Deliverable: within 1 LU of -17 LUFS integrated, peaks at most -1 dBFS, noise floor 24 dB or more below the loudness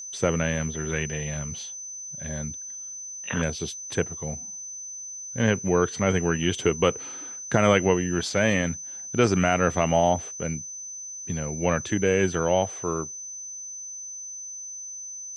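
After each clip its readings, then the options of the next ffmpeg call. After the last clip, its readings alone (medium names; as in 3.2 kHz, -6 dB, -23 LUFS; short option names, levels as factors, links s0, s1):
steady tone 6.1 kHz; tone level -35 dBFS; loudness -26.5 LUFS; peak level -5.0 dBFS; loudness target -17.0 LUFS
-> -af "bandreject=f=6100:w=30"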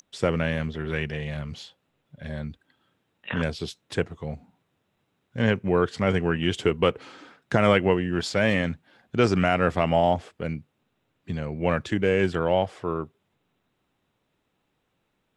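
steady tone not found; loudness -25.5 LUFS; peak level -5.0 dBFS; loudness target -17.0 LUFS
-> -af "volume=2.66,alimiter=limit=0.891:level=0:latency=1"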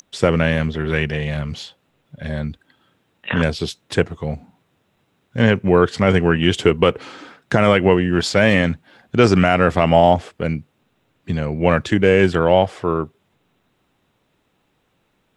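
loudness -17.5 LUFS; peak level -1.0 dBFS; noise floor -66 dBFS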